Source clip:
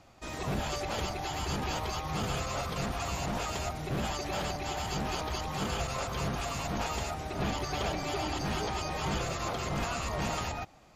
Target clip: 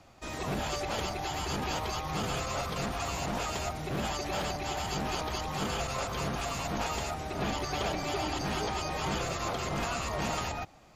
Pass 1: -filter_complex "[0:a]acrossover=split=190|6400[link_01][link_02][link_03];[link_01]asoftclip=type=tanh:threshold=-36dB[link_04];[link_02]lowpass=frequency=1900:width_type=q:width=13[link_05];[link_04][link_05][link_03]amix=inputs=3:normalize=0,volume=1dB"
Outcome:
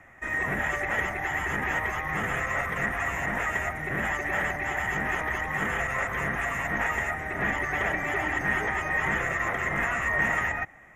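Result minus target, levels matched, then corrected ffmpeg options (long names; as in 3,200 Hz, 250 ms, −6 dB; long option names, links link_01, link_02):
2,000 Hz band +8.0 dB
-filter_complex "[0:a]acrossover=split=190|6400[link_01][link_02][link_03];[link_01]asoftclip=type=tanh:threshold=-36dB[link_04];[link_04][link_02][link_03]amix=inputs=3:normalize=0,volume=1dB"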